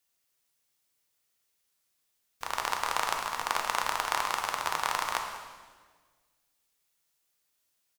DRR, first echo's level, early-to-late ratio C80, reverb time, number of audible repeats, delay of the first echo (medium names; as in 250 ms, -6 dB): 2.5 dB, -16.0 dB, 6.5 dB, 1.5 s, 1, 194 ms